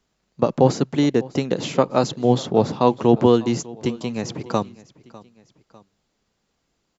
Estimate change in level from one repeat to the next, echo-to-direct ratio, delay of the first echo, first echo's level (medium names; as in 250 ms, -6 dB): -6.0 dB, -20.0 dB, 600 ms, -21.0 dB